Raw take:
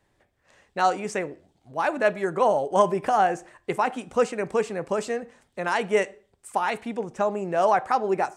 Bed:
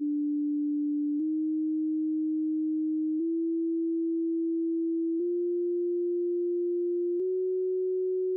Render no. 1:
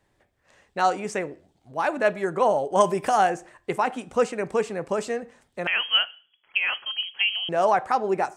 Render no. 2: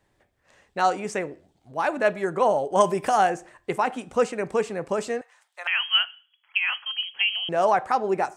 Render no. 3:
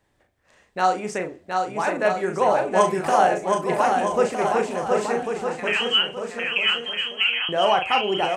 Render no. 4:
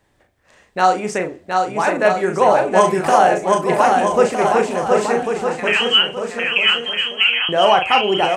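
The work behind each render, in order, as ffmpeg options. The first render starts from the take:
-filter_complex "[0:a]asettb=1/sr,asplit=3[a][b][c];[a]atrim=end=2.804[d];[b]atrim=start=2.8:end=3.3,asetpts=PTS-STARTPTS,afade=t=in:d=0.004:c=qsin,afade=t=out:st=0.496:d=0.004:c=qsin,highshelf=f=3.6k:g=10[e];[c]atrim=start=3.296[f];[d][e]acrossfade=d=0.004:c1=hsin:c2=qsin[g];[g][f]acrossfade=d=0.004:c1=qsin:c2=hsin,asettb=1/sr,asplit=3[h][i][j];[h]atrim=end=5.674[k];[i]atrim=start=5.67:end=7.49,asetpts=PTS-STARTPTS,afade=t=in:d=0.004:c=qsin,afade=t=out:st=1.816:d=0.004:c=qsin,lowpass=f=2.9k:t=q:w=0.5098,lowpass=f=2.9k:t=q:w=0.6013,lowpass=f=2.9k:t=q:w=0.9,lowpass=f=2.9k:t=q:w=2.563,afreqshift=-3400[l];[j]atrim=start=7.486[m];[k][l]acrossfade=d=0.004:c1=hsin:c2=qsin[n];[n][m]acrossfade=d=0.004:c1=qsin:c2=hsin"
-filter_complex "[0:a]asettb=1/sr,asplit=3[a][b][c];[a]atrim=end=5.214[d];[b]atrim=start=5.21:end=7.06,asetpts=PTS-STARTPTS,afade=t=in:d=0.004:c=qsin,afade=t=out:st=1.846:d=0.004:c=qsin,highpass=f=830:w=0.5412,highpass=f=830:w=1.3066[e];[c]atrim=start=7.056[f];[d][e]acrossfade=d=0.004:c1=hsin:c2=qsin[g];[g][f]acrossfade=d=0.004:c1=qsin:c2=hsin"
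-filter_complex "[0:a]asplit=2[a][b];[b]adelay=38,volume=-6.5dB[c];[a][c]amix=inputs=2:normalize=0,aecho=1:1:720|1260|1665|1969|2197:0.631|0.398|0.251|0.158|0.1"
-af "volume=6dB,alimiter=limit=-1dB:level=0:latency=1"

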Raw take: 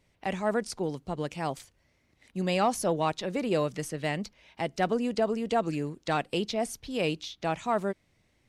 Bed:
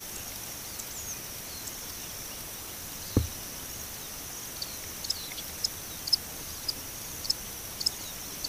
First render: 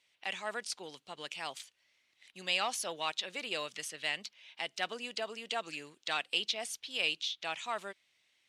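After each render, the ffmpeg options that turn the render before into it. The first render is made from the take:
-af "aexciter=amount=2.8:drive=4.4:freq=2.9k,bandpass=f=2.4k:t=q:w=1.1:csg=0"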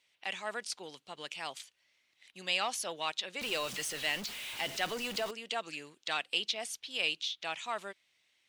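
-filter_complex "[0:a]asettb=1/sr,asplit=3[a][b][c];[a]atrim=end=3.414[d];[b]atrim=start=3.41:end=5.31,asetpts=PTS-STARTPTS,afade=t=in:d=0.004:c=qsin,afade=t=out:st=1.896:d=0.004:c=qsin,aeval=exprs='val(0)+0.5*0.0133*sgn(val(0))':c=same[e];[c]atrim=start=5.306[f];[d][e]acrossfade=d=0.004:c1=hsin:c2=qsin[g];[g][f]acrossfade=d=0.004:c1=qsin:c2=hsin"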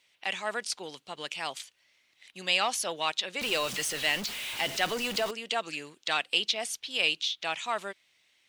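-af "volume=5.5dB"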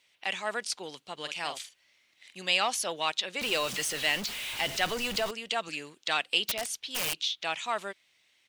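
-filter_complex "[0:a]asplit=3[a][b][c];[a]afade=t=out:st=1.24:d=0.02[d];[b]asplit=2[e][f];[f]adelay=46,volume=-8dB[g];[e][g]amix=inputs=2:normalize=0,afade=t=in:st=1.24:d=0.02,afade=t=out:st=2.39:d=0.02[h];[c]afade=t=in:st=2.39:d=0.02[i];[d][h][i]amix=inputs=3:normalize=0,asettb=1/sr,asplit=3[j][k][l];[j]atrim=end=4.114[m];[k]atrim=start=4.11:end=5.69,asetpts=PTS-STARTPTS,afade=t=in:d=0.004:c=qsin,afade=t=out:st=1.576:d=0.004:c=qsin,asubboost=boost=7:cutoff=140[n];[l]atrim=start=5.686[o];[m][n]acrossfade=d=0.004:c1=hsin:c2=qsin[p];[p][o]acrossfade=d=0.004:c1=qsin:c2=hsin,asettb=1/sr,asplit=3[q][r][s];[q]atrim=end=6.464[t];[r]atrim=start=6.46:end=7.18,asetpts=PTS-STARTPTS,afade=t=in:d=0.004:c=qsin,afade=t=out:st=0.716:d=0.004:c=qsin,aeval=exprs='(mod(14.1*val(0)+1,2)-1)/14.1':c=same[u];[s]atrim=start=7.176[v];[t][u]acrossfade=d=0.004:c1=hsin:c2=qsin[w];[w][v]acrossfade=d=0.004:c1=qsin:c2=hsin"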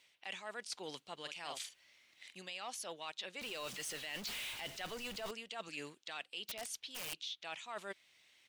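-af "alimiter=limit=-20.5dB:level=0:latency=1:release=475,areverse,acompressor=threshold=-41dB:ratio=10,areverse"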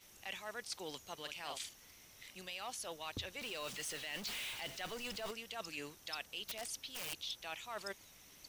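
-filter_complex "[1:a]volume=-22dB[a];[0:a][a]amix=inputs=2:normalize=0"

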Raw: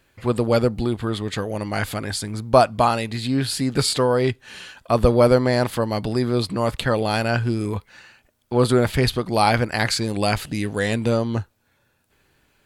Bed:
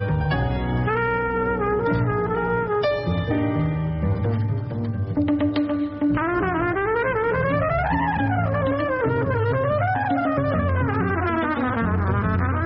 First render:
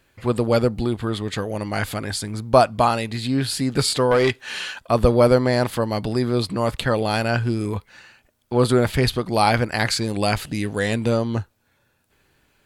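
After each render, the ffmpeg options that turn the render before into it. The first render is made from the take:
-filter_complex "[0:a]asettb=1/sr,asplit=3[a][b][c];[a]atrim=end=4.114[d];[b]atrim=start=4.11:end=4.79,asetpts=PTS-STARTPTS,afade=t=in:d=0.004:c=qsin,afade=t=out:st=0.676:d=0.004:c=qsin,asplit=2[e][f];[f]highpass=f=720:p=1,volume=15dB,asoftclip=type=tanh:threshold=-8.5dB[g];[e][g]amix=inputs=2:normalize=0,lowpass=f=7.5k:p=1,volume=-6dB[h];[c]atrim=start=4.786[i];[d][h]acrossfade=d=0.004:c1=hsin:c2=qsin[j];[j][i]acrossfade=d=0.004:c1=qsin:c2=hsin"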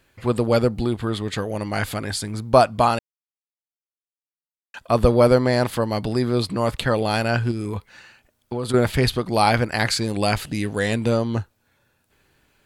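-filter_complex "[0:a]asettb=1/sr,asplit=3[a][b][c];[a]atrim=end=7.514[d];[b]atrim=start=7.51:end=8.74,asetpts=PTS-STARTPTS,afade=t=in:d=0.004:c=qsin,afade=t=out:st=1.226:d=0.004:c=qsin,acompressor=threshold=-22dB:ratio=6:attack=3.2:release=140:knee=1:detection=peak[e];[c]atrim=start=8.736[f];[d][e]acrossfade=d=0.004:c1=hsin:c2=qsin[g];[g][f]acrossfade=d=0.004:c1=qsin:c2=hsin,asplit=3[h][i][j];[h]atrim=end=2.99,asetpts=PTS-STARTPTS,afade=t=out:st=2.986:d=0.004:c=hsin[k];[i]atrim=start=2.99:end=4.74,asetpts=PTS-STARTPTS,volume=0[l];[j]atrim=start=4.74,asetpts=PTS-STARTPTS,afade=t=in:d=0.004:c=hsin[m];[k][l][m]concat=n=3:v=0:a=1"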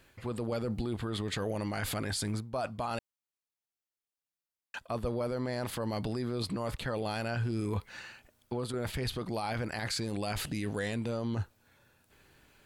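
-af "areverse,acompressor=threshold=-25dB:ratio=10,areverse,alimiter=level_in=1dB:limit=-24dB:level=0:latency=1:release=27,volume=-1dB"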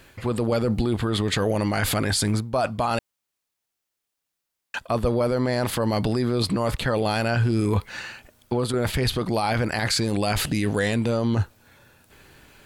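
-af "volume=11dB"

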